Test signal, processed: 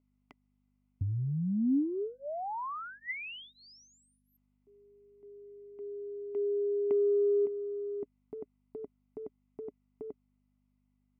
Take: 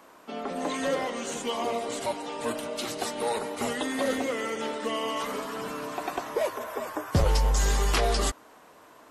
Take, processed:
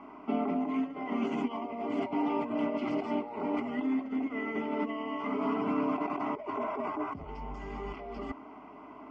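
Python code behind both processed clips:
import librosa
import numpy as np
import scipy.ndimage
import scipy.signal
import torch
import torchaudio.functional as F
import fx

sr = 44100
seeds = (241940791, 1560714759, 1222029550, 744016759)

y = fx.highpass(x, sr, hz=150.0, slope=6)
y = fx.high_shelf(y, sr, hz=9500.0, db=-3.5)
y = fx.over_compress(y, sr, threshold_db=-36.0, ratio=-1.0)
y = fx.fixed_phaser(y, sr, hz=2600.0, stages=8)
y = fx.add_hum(y, sr, base_hz=50, snr_db=34)
y = fx.air_absorb(y, sr, metres=390.0)
y = fx.small_body(y, sr, hz=(280.0, 410.0, 580.0, 2000.0), ring_ms=35, db=15)
y = y * 10.0 ** (-1.0 / 20.0)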